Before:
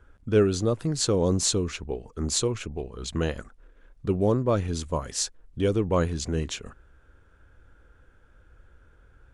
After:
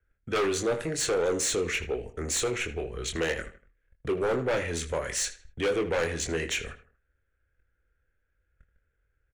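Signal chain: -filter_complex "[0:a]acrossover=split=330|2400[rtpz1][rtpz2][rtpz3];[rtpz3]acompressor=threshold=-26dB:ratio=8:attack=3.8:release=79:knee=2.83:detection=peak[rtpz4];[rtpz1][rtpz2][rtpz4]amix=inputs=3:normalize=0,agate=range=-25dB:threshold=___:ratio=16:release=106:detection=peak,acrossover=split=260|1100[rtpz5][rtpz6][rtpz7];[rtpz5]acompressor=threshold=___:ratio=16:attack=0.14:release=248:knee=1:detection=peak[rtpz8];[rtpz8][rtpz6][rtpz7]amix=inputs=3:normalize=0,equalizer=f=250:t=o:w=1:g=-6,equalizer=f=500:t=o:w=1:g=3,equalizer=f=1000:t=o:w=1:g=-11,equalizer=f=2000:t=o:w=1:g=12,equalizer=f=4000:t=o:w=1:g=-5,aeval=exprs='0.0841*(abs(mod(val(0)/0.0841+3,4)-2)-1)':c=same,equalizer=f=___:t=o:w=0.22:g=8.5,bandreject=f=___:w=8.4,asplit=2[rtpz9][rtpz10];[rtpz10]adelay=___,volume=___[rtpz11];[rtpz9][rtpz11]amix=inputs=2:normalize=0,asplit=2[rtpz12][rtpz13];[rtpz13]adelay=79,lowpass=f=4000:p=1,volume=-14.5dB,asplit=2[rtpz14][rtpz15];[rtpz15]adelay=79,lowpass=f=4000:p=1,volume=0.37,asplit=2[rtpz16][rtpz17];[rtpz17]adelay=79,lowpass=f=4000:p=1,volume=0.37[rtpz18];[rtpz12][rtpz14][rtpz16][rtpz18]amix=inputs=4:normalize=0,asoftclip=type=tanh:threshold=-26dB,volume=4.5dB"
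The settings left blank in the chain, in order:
-47dB, -39dB, 60, 4900, 24, -7dB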